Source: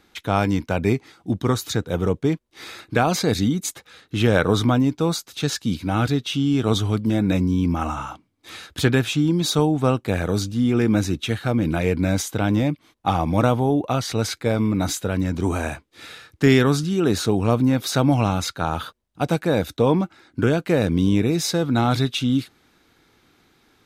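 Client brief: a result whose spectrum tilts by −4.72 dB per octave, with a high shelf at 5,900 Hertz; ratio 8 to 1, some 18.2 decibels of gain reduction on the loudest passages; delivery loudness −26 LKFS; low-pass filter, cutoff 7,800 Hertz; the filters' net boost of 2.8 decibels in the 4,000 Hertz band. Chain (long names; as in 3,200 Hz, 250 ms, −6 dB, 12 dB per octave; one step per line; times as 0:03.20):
low-pass filter 7,800 Hz
parametric band 4,000 Hz +5 dB
high-shelf EQ 5,900 Hz −4.5 dB
downward compressor 8 to 1, threshold −31 dBFS
level +9.5 dB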